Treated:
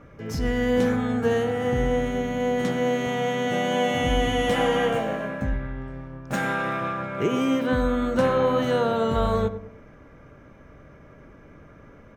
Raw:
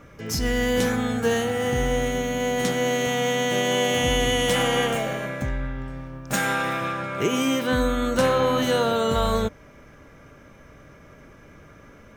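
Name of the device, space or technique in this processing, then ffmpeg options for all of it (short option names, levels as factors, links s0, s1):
through cloth: -filter_complex "[0:a]asettb=1/sr,asplit=3[s0][s1][s2];[s0]atrim=end=3.454[s3];[s1]atrim=start=3.45:end=5.54,asetpts=PTS-STARTPTS,afade=t=in:d=0.004:c=qsin,afade=t=out:st=2.086:d=0.004:c=qsin,asplit=2[s4][s5];[s5]adelay=19,volume=0.531[s6];[s4][s6]amix=inputs=2:normalize=0,atrim=end_sample=92169[s7];[s2]atrim=start=5.536[s8];[s3][s7]acrossfade=d=0.004:c1=hsin:c2=qsin[s9];[s9][s8]acrossfade=d=0.004:c1=qsin:c2=hsin,highshelf=f=3100:g=-14,asplit=2[s10][s11];[s11]adelay=101,lowpass=f=1100:p=1,volume=0.316,asplit=2[s12][s13];[s13]adelay=101,lowpass=f=1100:p=1,volume=0.41,asplit=2[s14][s15];[s15]adelay=101,lowpass=f=1100:p=1,volume=0.41,asplit=2[s16][s17];[s17]adelay=101,lowpass=f=1100:p=1,volume=0.41[s18];[s10][s12][s14][s16][s18]amix=inputs=5:normalize=0"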